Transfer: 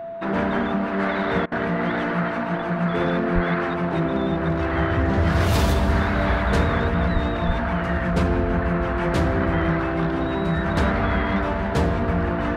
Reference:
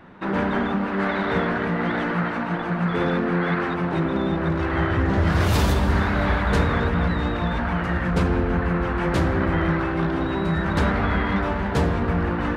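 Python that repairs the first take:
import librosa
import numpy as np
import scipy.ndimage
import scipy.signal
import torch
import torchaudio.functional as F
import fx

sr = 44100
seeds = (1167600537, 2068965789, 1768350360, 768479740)

y = fx.notch(x, sr, hz=670.0, q=30.0)
y = fx.highpass(y, sr, hz=140.0, slope=24, at=(3.34, 3.46), fade=0.02)
y = fx.highpass(y, sr, hz=140.0, slope=24, at=(7.13, 7.25), fade=0.02)
y = fx.highpass(y, sr, hz=140.0, slope=24, at=(7.46, 7.58), fade=0.02)
y = fx.fix_interpolate(y, sr, at_s=(1.46,), length_ms=57.0)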